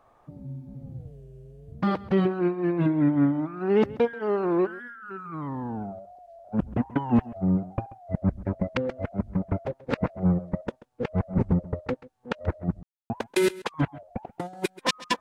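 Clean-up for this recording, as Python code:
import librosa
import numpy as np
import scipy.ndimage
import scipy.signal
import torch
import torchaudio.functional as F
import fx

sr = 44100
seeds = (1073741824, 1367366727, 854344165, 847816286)

y = fx.fix_declip(x, sr, threshold_db=-12.0)
y = fx.fix_ambience(y, sr, seeds[0], print_start_s=10.5, print_end_s=11.0, start_s=12.83, end_s=13.1)
y = fx.fix_echo_inverse(y, sr, delay_ms=134, level_db=-19.5)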